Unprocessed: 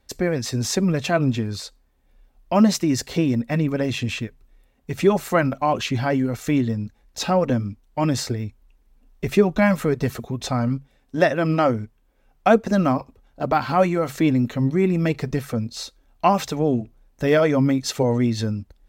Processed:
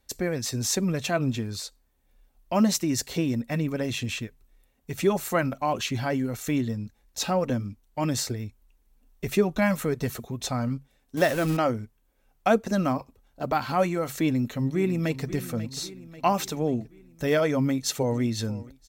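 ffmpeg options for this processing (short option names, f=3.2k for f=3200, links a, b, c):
-filter_complex "[0:a]asettb=1/sr,asplit=3[a][b][c];[a]atrim=end=11.174[d];[b]atrim=start=11.17:end=11.57,asetpts=PTS-STARTPTS,afade=t=in:d=0.004:c=qsin,afade=t=out:st=0.396:d=0.004:c=qsin,aeval=exprs='val(0)+0.5*0.0501*sgn(val(0))':c=same[e];[c]atrim=start=11.566[f];[d][e]acrossfade=d=0.004:c1=hsin:c2=qsin[g];[g][f]acrossfade=d=0.004:c1=qsin:c2=hsin,asplit=2[h][i];[i]afade=t=in:st=14.2:d=0.01,afade=t=out:st=15.26:d=0.01,aecho=0:1:540|1080|1620|2160|2700|3240:0.199526|0.109739|0.0603567|0.0331962|0.0182579|0.0100418[j];[h][j]amix=inputs=2:normalize=0,asplit=2[k][l];[l]afade=t=in:st=17.62:d=0.01,afade=t=out:st=18.2:d=0.01,aecho=0:1:490|980|1470:0.125893|0.0377678|0.0113303[m];[k][m]amix=inputs=2:normalize=0,aemphasis=mode=production:type=cd,bandreject=f=5k:w=27,volume=-5.5dB"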